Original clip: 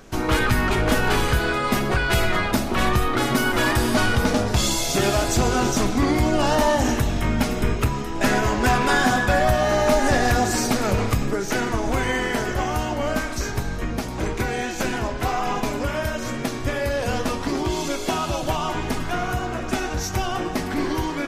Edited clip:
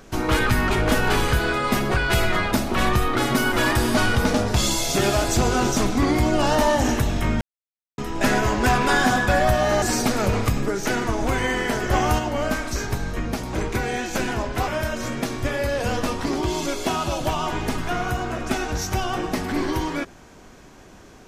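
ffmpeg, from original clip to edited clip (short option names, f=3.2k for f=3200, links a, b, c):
-filter_complex "[0:a]asplit=7[a][b][c][d][e][f][g];[a]atrim=end=7.41,asetpts=PTS-STARTPTS,afade=t=out:st=7.406:d=0.004:c=hsin[h];[b]atrim=start=7.41:end=7.98,asetpts=PTS-STARTPTS,volume=0[i];[c]atrim=start=7.98:end=9.822,asetpts=PTS-STARTPTS,afade=t=in:d=0.004:c=hsin[j];[d]atrim=start=10.468:end=12.542[k];[e]atrim=start=12.538:end=12.842,asetpts=PTS-STARTPTS,volume=4dB[l];[f]atrim=start=12.838:end=15.332[m];[g]atrim=start=15.898[n];[h][i][j]concat=n=3:v=0:a=1[o];[o][k]acrossfade=d=0.004:c1=hsin:c2=hsin[p];[p][l]acrossfade=d=0.004:c1=hsin:c2=hsin[q];[q][m]acrossfade=d=0.004:c1=hsin:c2=hsin[r];[r][n]acrossfade=d=0.004:c1=hsin:c2=hsin"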